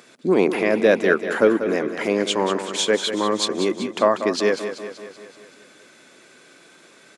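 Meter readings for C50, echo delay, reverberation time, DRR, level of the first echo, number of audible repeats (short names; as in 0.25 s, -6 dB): none, 0.191 s, none, none, -10.0 dB, 6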